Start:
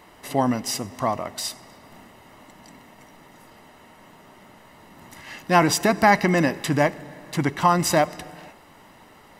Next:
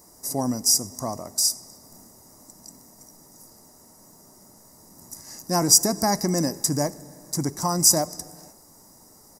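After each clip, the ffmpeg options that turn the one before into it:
ffmpeg -i in.wav -af "firequalizer=gain_entry='entry(260,0);entry(3000,-23);entry(5200,14)':delay=0.05:min_phase=1,volume=-3dB" out.wav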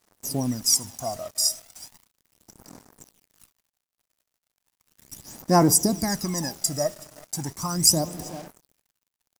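ffmpeg -i in.wav -af "aecho=1:1:374:0.0891,aphaser=in_gain=1:out_gain=1:delay=1.6:decay=0.72:speed=0.36:type=sinusoidal,acrusher=bits=5:mix=0:aa=0.5,volume=-5dB" out.wav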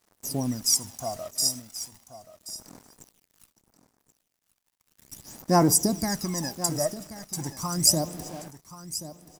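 ffmpeg -i in.wav -af "aecho=1:1:1080:0.2,volume=-2dB" out.wav

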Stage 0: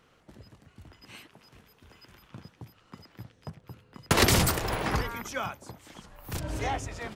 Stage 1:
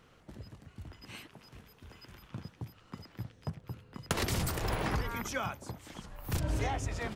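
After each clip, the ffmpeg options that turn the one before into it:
ffmpeg -i in.wav -af "acompressor=threshold=-30dB:ratio=16,lowshelf=frequency=180:gain=5.5" out.wav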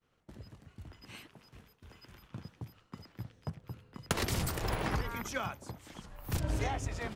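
ffmpeg -i in.wav -af "aeval=exprs='0.188*(cos(1*acos(clip(val(0)/0.188,-1,1)))-cos(1*PI/2))+0.0119*(cos(5*acos(clip(val(0)/0.188,-1,1)))-cos(5*PI/2))+0.015*(cos(7*acos(clip(val(0)/0.188,-1,1)))-cos(7*PI/2))':channel_layout=same,agate=range=-33dB:threshold=-55dB:ratio=3:detection=peak" out.wav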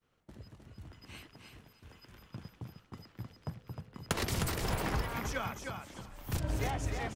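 ffmpeg -i in.wav -af "aecho=1:1:309|618|927:0.531|0.106|0.0212,volume=-1dB" out.wav

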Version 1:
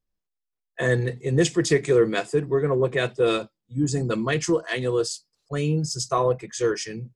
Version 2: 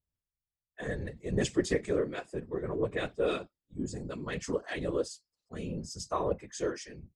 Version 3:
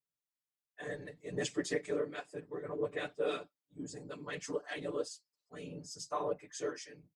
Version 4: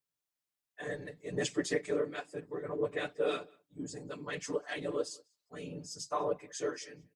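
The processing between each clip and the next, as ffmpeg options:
ffmpeg -i in.wav -af "afftfilt=real='hypot(re,im)*cos(2*PI*random(0))':imag='hypot(re,im)*sin(2*PI*random(1))':win_size=512:overlap=0.75,tremolo=f=0.62:d=0.5,adynamicequalizer=threshold=0.00447:dfrequency=2900:dqfactor=0.7:tfrequency=2900:tqfactor=0.7:attack=5:release=100:ratio=0.375:range=2.5:mode=cutabove:tftype=highshelf,volume=-2.5dB" out.wav
ffmpeg -i in.wav -af "highpass=frequency=360:poles=1,aecho=1:1:6.8:0.93,volume=-6dB" out.wav
ffmpeg -i in.wav -filter_complex "[0:a]asplit=2[link_01][link_02];[link_02]adelay=192.4,volume=-27dB,highshelf=frequency=4000:gain=-4.33[link_03];[link_01][link_03]amix=inputs=2:normalize=0,volume=2.5dB" out.wav

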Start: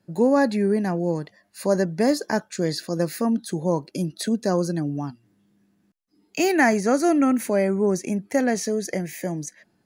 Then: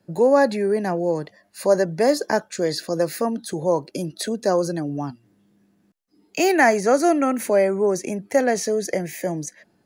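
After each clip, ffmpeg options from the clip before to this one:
ffmpeg -i in.wav -filter_complex "[0:a]equalizer=frequency=530:width_type=o:width=1.3:gain=4,acrossover=split=360[link_01][link_02];[link_01]alimiter=level_in=3dB:limit=-24dB:level=0:latency=1,volume=-3dB[link_03];[link_03][link_02]amix=inputs=2:normalize=0,volume=2dB" out.wav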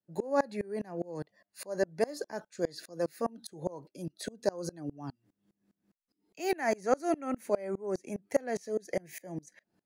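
ffmpeg -i in.wav -af "aeval=exprs='val(0)*pow(10,-28*if(lt(mod(-4.9*n/s,1),2*abs(-4.9)/1000),1-mod(-4.9*n/s,1)/(2*abs(-4.9)/1000),(mod(-4.9*n/s,1)-2*abs(-4.9)/1000)/(1-2*abs(-4.9)/1000))/20)':channel_layout=same,volume=-5.5dB" out.wav

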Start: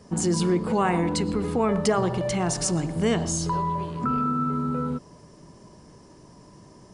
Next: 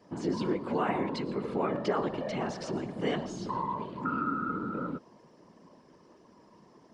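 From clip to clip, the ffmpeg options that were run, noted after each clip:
ffmpeg -i in.wav -filter_complex "[0:a]acrossover=split=6100[link_01][link_02];[link_02]acompressor=threshold=-45dB:ratio=4:attack=1:release=60[link_03];[link_01][link_03]amix=inputs=2:normalize=0,afftfilt=real='hypot(re,im)*cos(2*PI*random(0))':imag='hypot(re,im)*sin(2*PI*random(1))':win_size=512:overlap=0.75,acrossover=split=160 4900:gain=0.141 1 0.126[link_04][link_05][link_06];[link_04][link_05][link_06]amix=inputs=3:normalize=0" out.wav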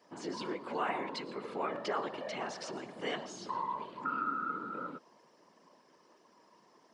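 ffmpeg -i in.wav -af "highpass=frequency=890:poles=1" out.wav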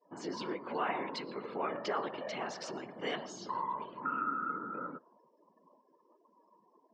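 ffmpeg -i in.wav -af "afftdn=noise_reduction=25:noise_floor=-59" out.wav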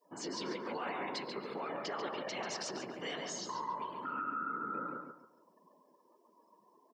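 ffmpeg -i in.wav -filter_complex "[0:a]highshelf=frequency=3500:gain=11.5,alimiter=level_in=5.5dB:limit=-24dB:level=0:latency=1:release=79,volume=-5.5dB,asplit=2[link_01][link_02];[link_02]adelay=140,lowpass=frequency=3400:poles=1,volume=-4dB,asplit=2[link_03][link_04];[link_04]adelay=140,lowpass=frequency=3400:poles=1,volume=0.29,asplit=2[link_05][link_06];[link_06]adelay=140,lowpass=frequency=3400:poles=1,volume=0.29,asplit=2[link_07][link_08];[link_08]adelay=140,lowpass=frequency=3400:poles=1,volume=0.29[link_09];[link_03][link_05][link_07][link_09]amix=inputs=4:normalize=0[link_10];[link_01][link_10]amix=inputs=2:normalize=0,volume=-1.5dB" out.wav

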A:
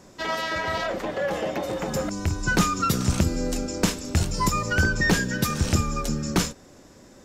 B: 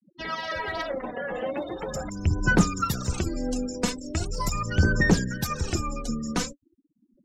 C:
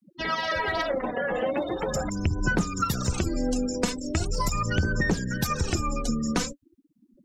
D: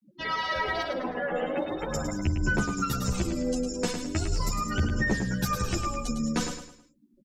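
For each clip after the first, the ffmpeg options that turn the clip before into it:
ffmpeg -i in.wav -af "afftfilt=real='re*gte(hypot(re,im),0.0224)':imag='im*gte(hypot(re,im),0.0224)':win_size=1024:overlap=0.75,aphaser=in_gain=1:out_gain=1:delay=4.2:decay=0.62:speed=0.4:type=sinusoidal,volume=-5.5dB" out.wav
ffmpeg -i in.wav -af "acompressor=threshold=-26dB:ratio=6,volume=4.5dB" out.wav
ffmpeg -i in.wav -filter_complex "[0:a]asplit=2[link_01][link_02];[link_02]aecho=0:1:106|212|318|424:0.447|0.161|0.0579|0.0208[link_03];[link_01][link_03]amix=inputs=2:normalize=0,asplit=2[link_04][link_05];[link_05]adelay=10.9,afreqshift=-0.42[link_06];[link_04][link_06]amix=inputs=2:normalize=1" out.wav

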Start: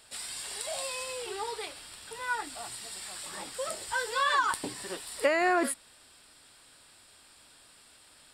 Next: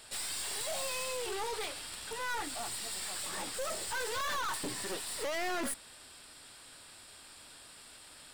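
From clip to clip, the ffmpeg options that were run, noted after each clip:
ffmpeg -i in.wav -af "aeval=exprs='(tanh(100*val(0)+0.5)-tanh(0.5))/100':channel_layout=same,volume=6dB" out.wav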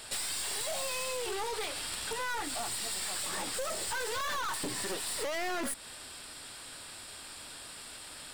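ffmpeg -i in.wav -af "acompressor=threshold=-39dB:ratio=6,volume=7dB" out.wav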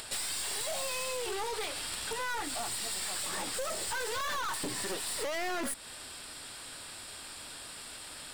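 ffmpeg -i in.wav -af "acompressor=mode=upward:threshold=-41dB:ratio=2.5" out.wav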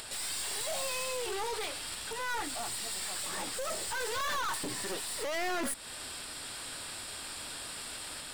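ffmpeg -i in.wav -af "alimiter=level_in=8.5dB:limit=-24dB:level=0:latency=1:release=331,volume=-8.5dB,volume=3.5dB" out.wav

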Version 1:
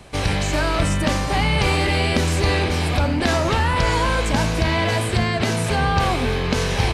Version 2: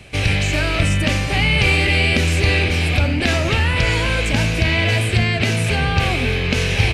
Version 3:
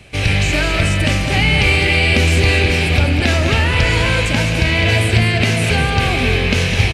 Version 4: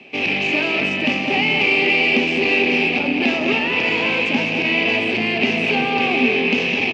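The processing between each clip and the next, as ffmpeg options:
ffmpeg -i in.wav -af "equalizer=frequency=100:width_type=o:width=0.67:gain=6,equalizer=frequency=1000:width_type=o:width=0.67:gain=-8,equalizer=frequency=2500:width_type=o:width=0.67:gain=10" out.wav
ffmpeg -i in.wav -filter_complex "[0:a]dynaudnorm=framelen=120:gausssize=3:maxgain=6dB,asplit=2[link_01][link_02];[link_02]aecho=0:1:207|414|621|828|1035:0.398|0.179|0.0806|0.0363|0.0163[link_03];[link_01][link_03]amix=inputs=2:normalize=0,volume=-1dB" out.wav
ffmpeg -i in.wav -af "asoftclip=type=tanh:threshold=-11dB,highpass=frequency=190:width=0.5412,highpass=frequency=190:width=1.3066,equalizer=frequency=250:width_type=q:width=4:gain=10,equalizer=frequency=400:width_type=q:width=4:gain=7,equalizer=frequency=810:width_type=q:width=4:gain=6,equalizer=frequency=1500:width_type=q:width=4:gain=-8,equalizer=frequency=2600:width_type=q:width=4:gain=10,equalizer=frequency=4000:width_type=q:width=4:gain=-5,lowpass=frequency=4900:width=0.5412,lowpass=frequency=4900:width=1.3066,volume=-3dB" out.wav

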